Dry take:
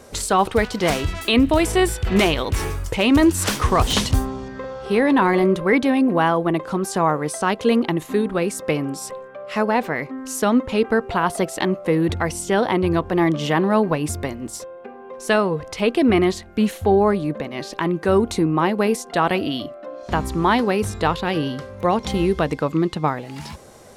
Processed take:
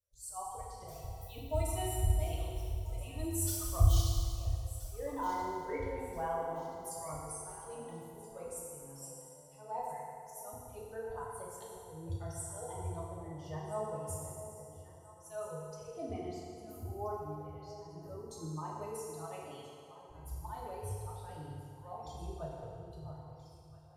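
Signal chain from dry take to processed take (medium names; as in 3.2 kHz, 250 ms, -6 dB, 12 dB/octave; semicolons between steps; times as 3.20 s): expander on every frequency bin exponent 2; slow attack 163 ms; FFT filter 110 Hz 0 dB, 180 Hz -28 dB, 280 Hz -29 dB, 590 Hz -14 dB, 1.1 kHz -18 dB, 1.8 kHz -28 dB, 13 kHz -5 dB; echo whose repeats swap between lows and highs 664 ms, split 830 Hz, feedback 58%, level -10.5 dB; FDN reverb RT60 2.2 s, low-frequency decay 0.85×, high-frequency decay 0.85×, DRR -5.5 dB; trim -2 dB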